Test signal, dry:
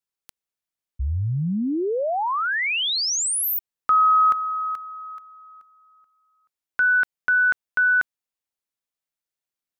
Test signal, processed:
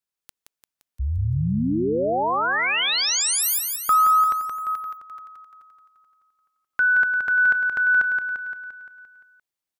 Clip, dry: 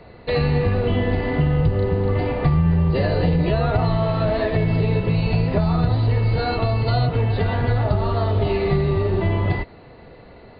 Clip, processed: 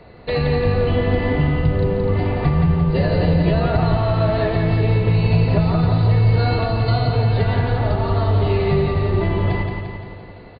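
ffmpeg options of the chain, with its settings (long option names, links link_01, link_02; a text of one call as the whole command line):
ffmpeg -i in.wav -af "aecho=1:1:173|346|519|692|865|1038|1211|1384:0.562|0.326|0.189|0.11|0.0636|0.0369|0.0214|0.0124" out.wav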